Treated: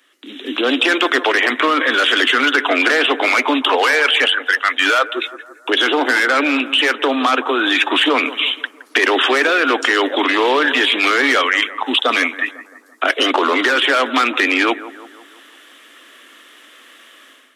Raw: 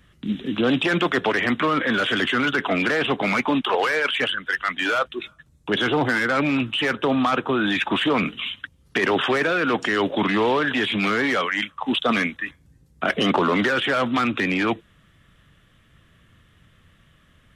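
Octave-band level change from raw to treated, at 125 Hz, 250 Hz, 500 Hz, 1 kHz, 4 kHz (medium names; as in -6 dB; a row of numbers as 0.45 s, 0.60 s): under -20 dB, +1.5 dB, +5.0 dB, +6.5 dB, +10.0 dB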